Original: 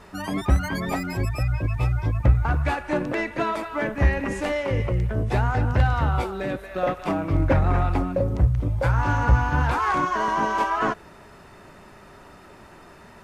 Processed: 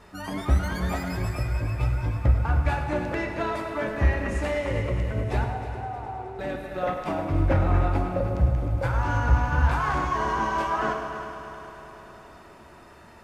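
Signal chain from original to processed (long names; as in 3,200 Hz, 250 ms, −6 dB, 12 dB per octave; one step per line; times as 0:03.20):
0:05.44–0:06.39: pair of resonant band-passes 560 Hz, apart 0.85 octaves
on a send: echo machine with several playback heads 104 ms, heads first and third, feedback 70%, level −13 dB
on the sum: reverb whose tail is shaped and stops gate 470 ms falling, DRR 5 dB
level −4.5 dB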